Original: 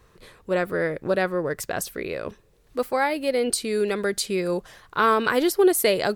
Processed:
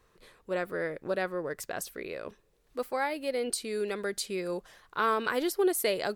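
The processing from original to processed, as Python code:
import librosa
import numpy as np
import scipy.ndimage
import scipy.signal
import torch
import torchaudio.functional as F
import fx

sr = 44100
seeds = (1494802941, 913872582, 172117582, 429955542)

y = fx.peak_eq(x, sr, hz=92.0, db=-6.5, octaves=2.1)
y = y * librosa.db_to_amplitude(-7.5)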